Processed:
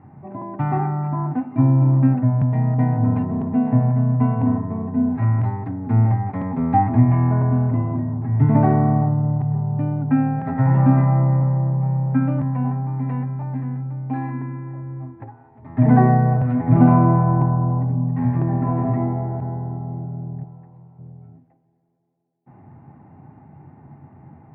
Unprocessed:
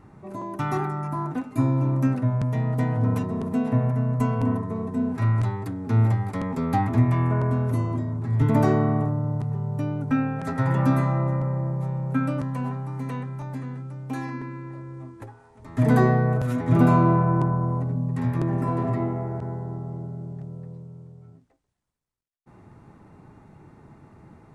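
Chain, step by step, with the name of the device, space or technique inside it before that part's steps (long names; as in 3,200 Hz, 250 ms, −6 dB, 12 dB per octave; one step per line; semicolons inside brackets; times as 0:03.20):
0:20.44–0:20.99: low shelf with overshoot 610 Hz −9.5 dB, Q 1.5
tape delay 174 ms, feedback 85%, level −23 dB, low-pass 1,900 Hz
bass cabinet (loudspeaker in its box 83–2,200 Hz, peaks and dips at 89 Hz +8 dB, 140 Hz +9 dB, 250 Hz +6 dB, 450 Hz −4 dB, 770 Hz +9 dB, 1,300 Hz −5 dB)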